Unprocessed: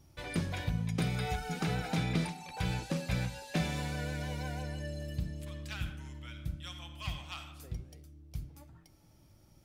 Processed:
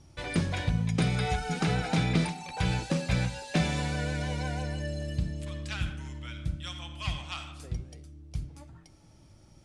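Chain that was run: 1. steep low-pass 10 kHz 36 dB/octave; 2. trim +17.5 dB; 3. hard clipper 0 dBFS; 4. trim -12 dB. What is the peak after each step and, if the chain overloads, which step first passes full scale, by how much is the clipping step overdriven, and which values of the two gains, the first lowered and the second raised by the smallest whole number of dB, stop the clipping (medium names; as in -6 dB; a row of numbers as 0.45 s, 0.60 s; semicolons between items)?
-19.0 dBFS, -1.5 dBFS, -1.5 dBFS, -13.5 dBFS; nothing clips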